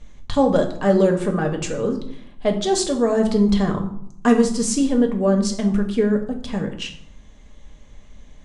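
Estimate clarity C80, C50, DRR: 13.0 dB, 9.5 dB, 3.5 dB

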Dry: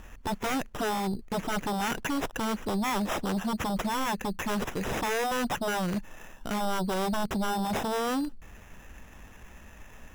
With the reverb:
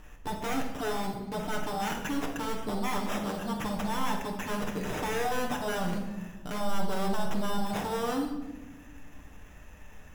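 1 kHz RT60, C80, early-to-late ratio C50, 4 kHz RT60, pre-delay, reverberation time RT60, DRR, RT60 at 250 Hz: 1.0 s, 8.0 dB, 5.5 dB, 0.80 s, 7 ms, 1.2 s, 0.5 dB, 2.1 s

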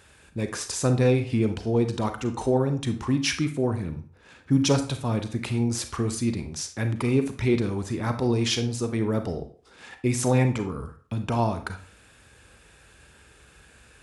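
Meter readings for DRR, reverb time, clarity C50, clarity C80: 7.5 dB, 0.45 s, 10.5 dB, 15.5 dB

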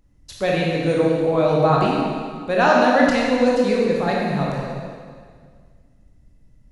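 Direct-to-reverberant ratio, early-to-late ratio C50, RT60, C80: −3.5 dB, −1.5 dB, 1.9 s, 0.5 dB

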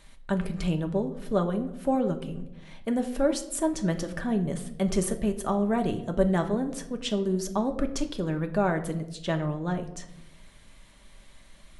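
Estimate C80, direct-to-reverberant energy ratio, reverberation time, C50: 15.0 dB, 5.0 dB, 0.90 s, 12.5 dB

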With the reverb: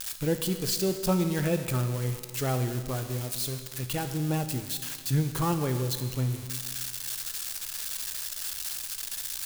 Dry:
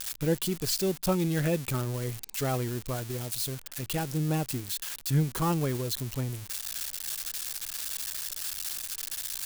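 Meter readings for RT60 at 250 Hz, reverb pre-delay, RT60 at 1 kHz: 1.7 s, 15 ms, 1.7 s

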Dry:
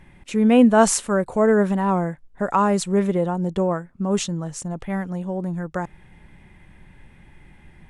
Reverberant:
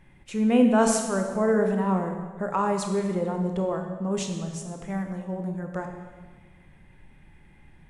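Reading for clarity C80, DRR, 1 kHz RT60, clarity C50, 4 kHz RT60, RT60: 7.0 dB, 3.5 dB, 1.4 s, 5.5 dB, 1.2 s, 1.5 s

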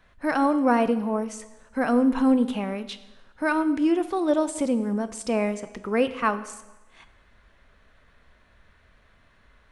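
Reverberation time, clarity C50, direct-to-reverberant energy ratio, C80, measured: 1.1 s, 14.0 dB, 11.5 dB, 15.5 dB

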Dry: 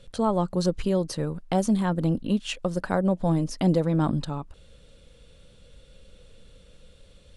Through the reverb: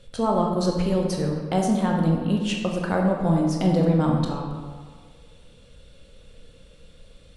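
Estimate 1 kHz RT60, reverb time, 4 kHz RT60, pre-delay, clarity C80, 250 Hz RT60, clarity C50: 1.7 s, 1.7 s, 1.0 s, 17 ms, 4.5 dB, 1.6 s, 2.5 dB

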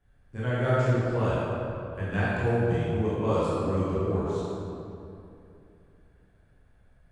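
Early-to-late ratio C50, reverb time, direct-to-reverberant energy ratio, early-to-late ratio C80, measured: −5.0 dB, 2.7 s, −10.0 dB, −2.5 dB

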